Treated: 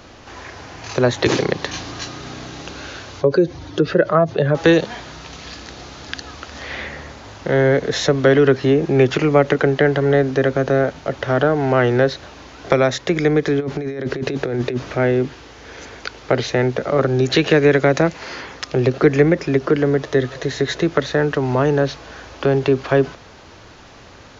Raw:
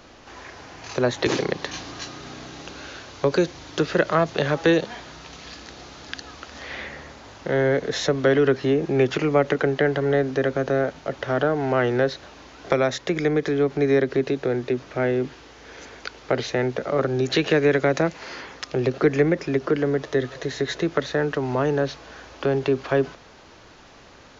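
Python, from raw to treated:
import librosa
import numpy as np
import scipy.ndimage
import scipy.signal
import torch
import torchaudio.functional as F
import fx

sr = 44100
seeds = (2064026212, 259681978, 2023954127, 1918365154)

y = fx.spec_expand(x, sr, power=1.6, at=(3.21, 4.55))
y = fx.peak_eq(y, sr, hz=91.0, db=5.5, octaves=1.1)
y = fx.over_compress(y, sr, threshold_db=-27.0, ratio=-1.0, at=(13.59, 14.94), fade=0.02)
y = y * 10.0 ** (5.0 / 20.0)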